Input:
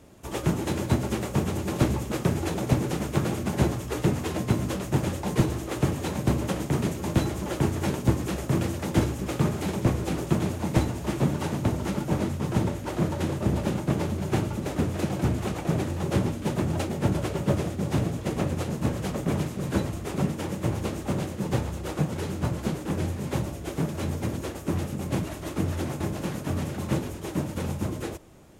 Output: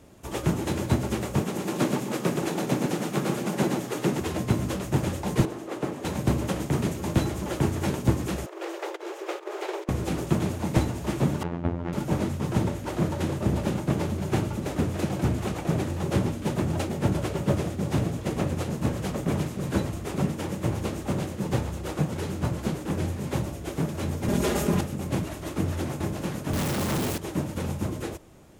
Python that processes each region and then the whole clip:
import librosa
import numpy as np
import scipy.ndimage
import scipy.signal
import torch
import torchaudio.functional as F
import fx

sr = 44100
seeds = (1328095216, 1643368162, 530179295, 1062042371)

y = fx.chain(x, sr, fx.highpass(hz=160.0, slope=24),
    fx.echo_single(ms=122, db=-4.5), at=(1.42, 4.2))
y = fx.chain(y, sr, fx.highpass(hz=260.0, slope=12),
    fx.high_shelf(hz=2000.0, db=-8.5),
    fx.doppler_dist(depth_ms=0.29), at=(5.45, 6.05))
y = fx.chain(y, sr, fx.peak_eq(hz=11000.0, db=-13.5, octaves=1.7),
    fx.over_compress(threshold_db=-27.0, ratio=-0.5),
    fx.brickwall_highpass(low_hz=330.0), at=(8.46, 9.89))
y = fx.chain(y, sr, fx.lowpass(hz=2000.0, slope=12),
    fx.robotise(hz=85.7), at=(11.43, 11.93))
y = fx.chain(y, sr, fx.comb(ms=4.9, depth=0.76),
    fx.env_flatten(amount_pct=70), at=(24.28, 24.81))
y = fx.chain(y, sr, fx.highpass(hz=95.0, slope=12),
    fx.quant_companded(bits=2), at=(26.53, 27.18))